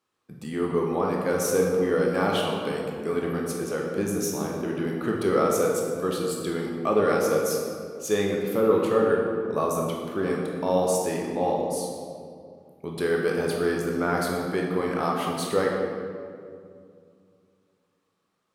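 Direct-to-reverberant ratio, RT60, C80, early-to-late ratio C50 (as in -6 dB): -2.0 dB, 2.3 s, 2.5 dB, 1.0 dB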